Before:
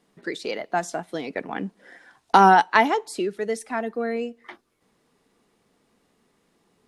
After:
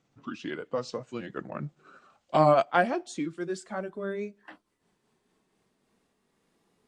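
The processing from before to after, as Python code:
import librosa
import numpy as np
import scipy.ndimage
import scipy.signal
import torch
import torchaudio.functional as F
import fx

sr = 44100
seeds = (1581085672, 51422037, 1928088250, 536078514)

y = fx.pitch_glide(x, sr, semitones=-6.5, runs='ending unshifted')
y = F.gain(torch.from_numpy(y), -5.0).numpy()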